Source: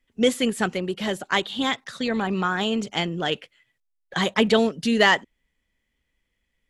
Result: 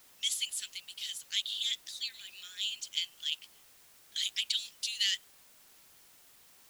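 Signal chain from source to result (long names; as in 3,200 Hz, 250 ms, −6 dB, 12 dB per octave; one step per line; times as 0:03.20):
inverse Chebyshev high-pass filter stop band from 970 Hz, stop band 60 dB
background noise white −60 dBFS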